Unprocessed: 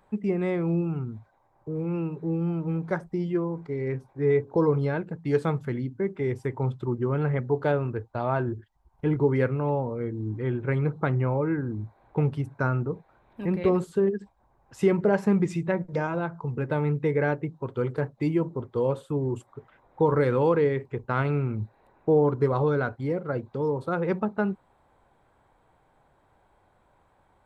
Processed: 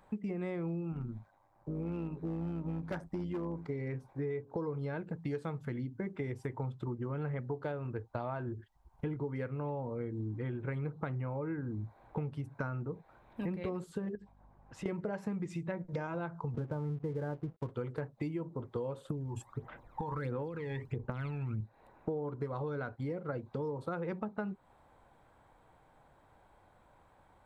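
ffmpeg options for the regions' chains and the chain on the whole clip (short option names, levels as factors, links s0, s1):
-filter_complex "[0:a]asettb=1/sr,asplit=3[s0][s1][s2];[s0]atrim=end=0.924[s3];[s1]atrim=start=0.92:end=3.66,asetpts=PTS-STARTPTS,afade=t=in:d=0.004:c=qsin,afade=t=out:st=2.736:d=0.004:c=qsin,tremolo=f=100:d=0.571,bandreject=f=460:w=9,volume=18.8,asoftclip=hard,volume=0.0531[s4];[s2]atrim=start=3.656[s5];[s3][s4]acrossfade=d=0.004:c1=hsin:c2=qsin[s6];[s6][s5]acrossfade=d=0.004:c1=qsin:c2=hsin,asettb=1/sr,asplit=3[s7][s8][s9];[s7]atrim=end=14.154[s10];[s8]atrim=start=14.15:end=14.86,asetpts=PTS-STARTPTS,afade=t=in:d=0.004:c=qsin,afade=t=out:st=0.706:d=0.004:c=qsin,aemphasis=mode=reproduction:type=50fm,acompressor=threshold=0.00355:ratio=2:attack=3.2:release=140:knee=1:detection=peak,aeval=exprs='val(0)+0.000794*(sin(2*PI*50*n/s)+sin(2*PI*2*50*n/s)/2+sin(2*PI*3*50*n/s)/3+sin(2*PI*4*50*n/s)/4+sin(2*PI*5*50*n/s)/5)':c=same[s11];[s9]atrim=start=14.856[s12];[s10][s11]acrossfade=d=0.004:c1=hsin:c2=qsin[s13];[s13][s12]acrossfade=d=0.004:c1=qsin:c2=hsin,asettb=1/sr,asplit=3[s14][s15][s16];[s14]atrim=end=16.544[s17];[s15]atrim=start=16.54:end=17.7,asetpts=PTS-STARTPTS,afade=t=in:d=0.004:c=qsin,afade=t=out:st=1.156:d=0.004:c=qsin,lowpass=f=1400:w=0.5412,lowpass=f=1400:w=1.3066,lowshelf=f=170:g=9,aeval=exprs='sgn(val(0))*max(abs(val(0))-0.00562,0)':c=same[s18];[s16]atrim=start=17.696[s19];[s17][s18]acrossfade=d=0.004:c1=hsin:c2=qsin[s20];[s20][s19]acrossfade=d=0.004:c1=qsin:c2=hsin,asettb=1/sr,asplit=3[s21][s22][s23];[s21]atrim=end=19.054[s24];[s22]atrim=start=19.05:end=21.61,asetpts=PTS-STARTPTS,afade=t=in:d=0.004:c=qsin,afade=t=out:st=2.556:d=0.004:c=qsin,acompressor=threshold=0.0355:ratio=6:attack=3.2:release=140:knee=1:detection=peak,aphaser=in_gain=1:out_gain=1:delay=1.2:decay=0.7:speed=1.5:type=sinusoidal[s25];[s23]atrim=start=21.606[s26];[s24][s25]acrossfade=d=0.004:c1=hsin:c2=qsin[s27];[s27][s26]acrossfade=d=0.004:c1=qsin:c2=hsin,bandreject=f=390:w=12,acompressor=threshold=0.02:ratio=10"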